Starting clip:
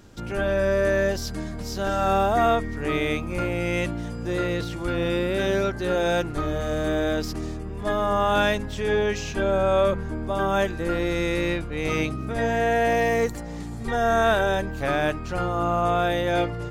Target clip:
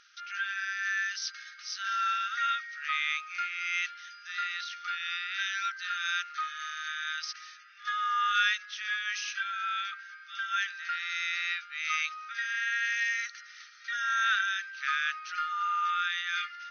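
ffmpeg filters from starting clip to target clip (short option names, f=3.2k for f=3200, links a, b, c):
-af "afftfilt=real='re*between(b*sr/4096,1200,6400)':imag='im*between(b*sr/4096,1200,6400)':win_size=4096:overlap=0.75"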